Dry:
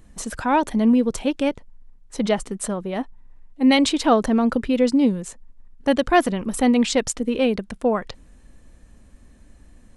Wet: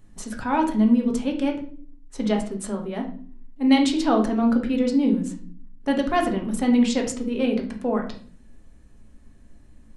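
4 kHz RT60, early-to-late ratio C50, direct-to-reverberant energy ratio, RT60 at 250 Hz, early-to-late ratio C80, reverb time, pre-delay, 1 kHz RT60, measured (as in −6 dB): 0.35 s, 9.0 dB, 1.5 dB, 0.85 s, 13.5 dB, 0.50 s, 5 ms, 0.40 s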